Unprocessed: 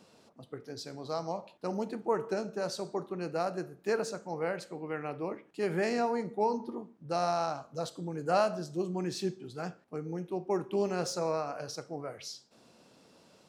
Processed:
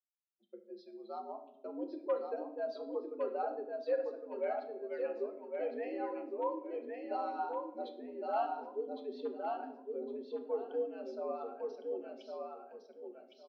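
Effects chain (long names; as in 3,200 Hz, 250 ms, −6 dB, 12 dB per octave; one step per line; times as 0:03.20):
spectral dynamics exaggerated over time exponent 2
downward expander −58 dBFS
parametric band 1,700 Hz −12 dB 2.4 octaves
speech leveller within 4 dB 0.5 s
hard clipping −29 dBFS, distortion −32 dB
on a send: repeating echo 1,110 ms, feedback 22%, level −4 dB
on the sum: rectangular room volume 200 cubic metres, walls mixed, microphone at 0.47 metres
single-sideband voice off tune +83 Hz 230–3,400 Hz
level +2.5 dB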